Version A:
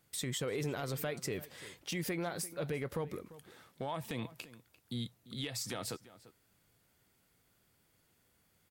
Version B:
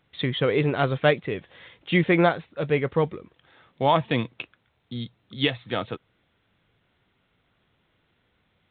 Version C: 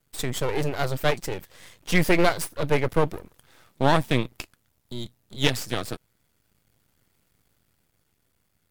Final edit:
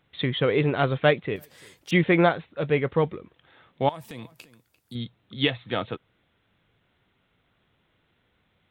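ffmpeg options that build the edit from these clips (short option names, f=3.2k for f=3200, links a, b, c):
-filter_complex "[0:a]asplit=2[a][b];[1:a]asplit=3[c][d][e];[c]atrim=end=1.362[f];[a]atrim=start=1.358:end=1.912[g];[d]atrim=start=1.908:end=3.892[h];[b]atrim=start=3.888:end=4.952[i];[e]atrim=start=4.948[j];[f][g]acrossfade=d=0.004:c1=hsin:c2=hsin[k];[k][h]acrossfade=d=0.004:c1=hsin:c2=hsin[l];[l][i]acrossfade=d=0.004:c1=hsin:c2=hsin[m];[m][j]acrossfade=d=0.004:c1=hsin:c2=hsin"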